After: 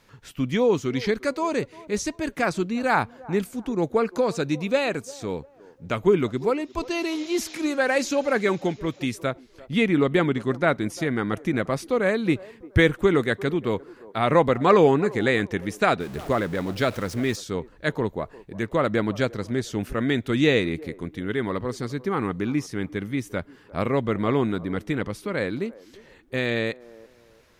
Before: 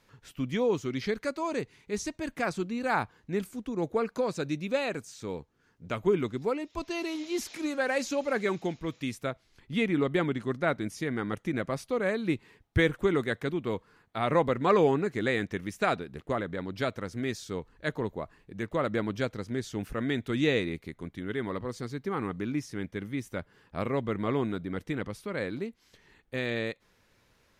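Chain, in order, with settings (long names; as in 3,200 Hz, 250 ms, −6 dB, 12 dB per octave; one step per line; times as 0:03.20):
0:16.00–0:17.36: converter with a step at zero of −42 dBFS
delay with a band-pass on its return 348 ms, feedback 31%, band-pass 560 Hz, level −19 dB
level +6.5 dB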